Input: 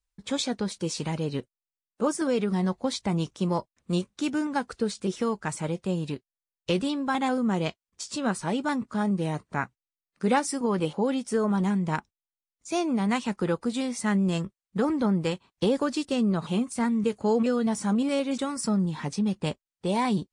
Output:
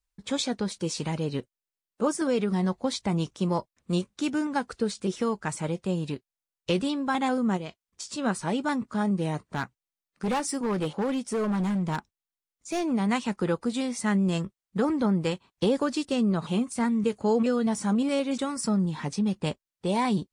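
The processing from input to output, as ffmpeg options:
-filter_complex "[0:a]asplit=3[a][b][c];[a]afade=t=out:st=7.56:d=0.02[d];[b]acompressor=threshold=-32dB:ratio=6:attack=3.2:release=140:knee=1:detection=peak,afade=t=in:st=7.56:d=0.02,afade=t=out:st=8.17:d=0.02[e];[c]afade=t=in:st=8.17:d=0.02[f];[d][e][f]amix=inputs=3:normalize=0,asettb=1/sr,asplit=3[g][h][i];[g]atrim=end=9.424[j];[h]atrim=start=9.42:end=12.92,asetpts=PTS-STARTPTS,afade=t=in:d=0.004:c=qsin,afade=t=out:st=3.496:d=0.004:c=qsin,asoftclip=type=hard:threshold=-23.5dB[k];[i]atrim=start=12.916[l];[j][k]acrossfade=d=0.004:c1=hsin:c2=qsin[m];[m][l]acrossfade=d=0.004:c1=qsin:c2=hsin"

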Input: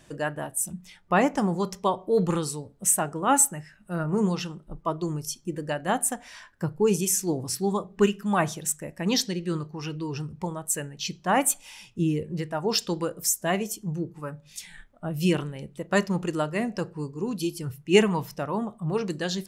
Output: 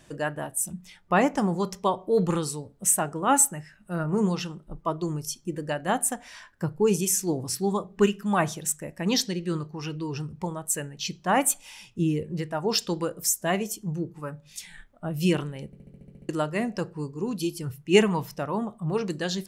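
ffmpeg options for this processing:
-filter_complex "[0:a]asplit=10[a][b][c][d][e][f][g][h][i][j];[a]atrim=end=15.732[k];[b]atrim=start=15.658:end=15.732[l];[c]atrim=start=15.658:end=15.732[m];[d]atrim=start=15.658:end=15.732[n];[e]atrim=start=15.658:end=15.732[o];[f]atrim=start=15.658:end=15.732[p];[g]atrim=start=15.658:end=15.732[q];[h]atrim=start=15.658:end=15.732[r];[i]atrim=start=15.658:end=15.732[s];[j]atrim=start=16.288[t];[k][l]acrossfade=d=0.004:c1=hsin:c2=hsin[u];[u][m]acrossfade=d=0.004:c1=hsin:c2=hsin[v];[v][n]acrossfade=d=0.004:c1=hsin:c2=hsin[w];[w][o]acrossfade=d=0.004:c1=hsin:c2=hsin[x];[x][p]acrossfade=d=0.004:c1=hsin:c2=hsin[y];[y][q]acrossfade=d=0.004:c1=hsin:c2=hsin[z];[z][r]acrossfade=d=0.004:c1=hsin:c2=hsin[aa];[aa][s]acrossfade=d=0.004:c1=hsin:c2=hsin[ab];[ab][t]acrossfade=d=0.004:c1=hsin:c2=hsin"

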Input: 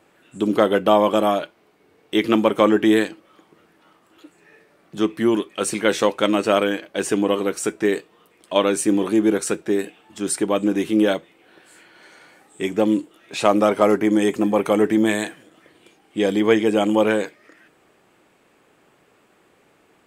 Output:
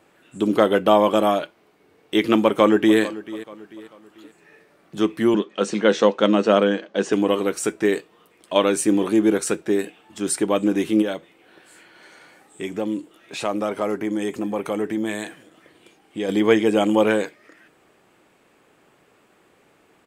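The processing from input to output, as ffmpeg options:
-filter_complex "[0:a]asplit=2[a][b];[b]afade=t=in:st=2.42:d=0.01,afade=t=out:st=2.99:d=0.01,aecho=0:1:440|880|1320:0.141254|0.0565015|0.0226006[c];[a][c]amix=inputs=2:normalize=0,asettb=1/sr,asplit=3[d][e][f];[d]atrim=end=5.344[g];[e]atrim=start=5.34:end=7.13,asetpts=PTS-STARTPTS,afade=t=in:d=0.004:c=qsin,afade=t=out:st=1.786:d=0.004:c=qsin,highpass=200,equalizer=f=200:t=q:w=4:g=9,equalizer=f=480:t=q:w=4:g=4,equalizer=f=2.3k:t=q:w=4:g=-6,equalizer=f=4.7k:t=q:w=4:g=-3,lowpass=f=6.2k:w=0.5412,lowpass=f=6.2k:w=1.3066[h];[f]atrim=start=7.126[i];[g][h]acrossfade=d=0.004:c1=hsin:c2=qsin[j];[j][i]acrossfade=d=0.004:c1=qsin:c2=hsin,asplit=3[k][l][m];[k]afade=t=out:st=11.01:d=0.02[n];[l]acompressor=threshold=-33dB:ratio=1.5:attack=3.2:release=140:knee=1:detection=peak,afade=t=in:st=11.01:d=0.02,afade=t=out:st=16.28:d=0.02[o];[m]afade=t=in:st=16.28:d=0.02[p];[n][o][p]amix=inputs=3:normalize=0"

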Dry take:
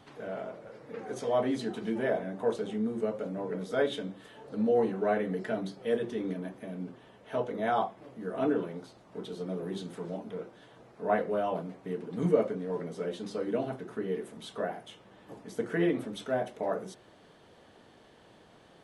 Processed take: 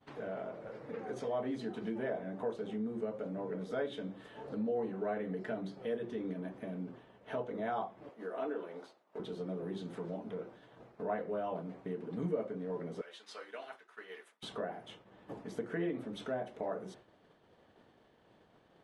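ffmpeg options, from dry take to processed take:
-filter_complex "[0:a]asettb=1/sr,asplit=3[a][b][c];[a]atrim=end=8.094[d];[b]atrim=start=8.09:end=9.2,asetpts=PTS-STARTPTS,afade=t=in:d=0.004:c=qsin,afade=t=out:st=1.106:d=0.004:c=qsin,highpass=420[e];[c]atrim=start=9.196[f];[d][e]acrossfade=d=0.004:c1=hsin:c2=qsin[g];[g][f]acrossfade=d=0.004:c1=qsin:c2=hsin,asettb=1/sr,asplit=3[h][i][j];[h]atrim=end=13.014[k];[i]atrim=start=13.01:end=14.43,asetpts=PTS-STARTPTS,afade=t=in:d=0.004:c=qsin,afade=t=out:st=1.416:d=0.004:c=qsin,highpass=1.4k[l];[j]atrim=start=14.426[m];[k][l]acrossfade=d=0.004:c1=hsin:c2=qsin[n];[n][m]acrossfade=d=0.004:c1=qsin:c2=hsin,agate=range=-33dB:threshold=-47dB:ratio=3:detection=peak,highshelf=f=5k:g=-12,acompressor=threshold=-53dB:ratio=2,volume=7dB"

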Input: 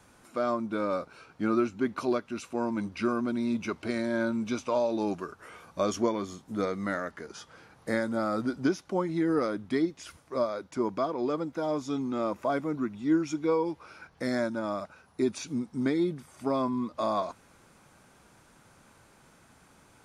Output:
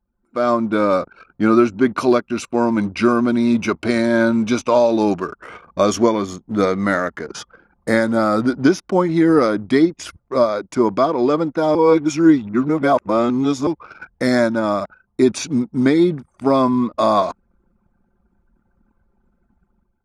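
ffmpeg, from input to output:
-filter_complex "[0:a]asplit=3[a][b][c];[a]atrim=end=11.752[d];[b]atrim=start=11.748:end=13.672,asetpts=PTS-STARTPTS,areverse[e];[c]atrim=start=13.668[f];[d][e]acrossfade=d=0.004:c1=hsin:c2=hsin[g];[g][f]acrossfade=d=0.004:c1=hsin:c2=hsin,anlmdn=0.0158,dynaudnorm=f=110:g=7:m=12dB,volume=1.5dB"

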